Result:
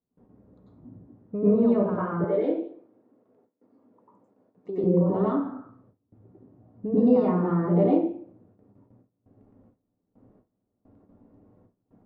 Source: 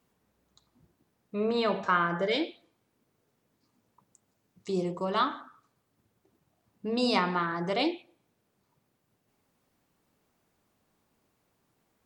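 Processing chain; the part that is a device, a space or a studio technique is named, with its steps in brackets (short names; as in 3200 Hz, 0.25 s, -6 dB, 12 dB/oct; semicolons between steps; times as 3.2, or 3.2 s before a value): television next door (compressor 4:1, threshold -36 dBFS, peak gain reduction 13.5 dB; LPF 560 Hz 12 dB/oct; reverb RT60 0.45 s, pre-delay 90 ms, DRR -8.5 dB); gate with hold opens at -56 dBFS; 2.24–4.84 HPF 350 Hz 12 dB/oct; gain +8 dB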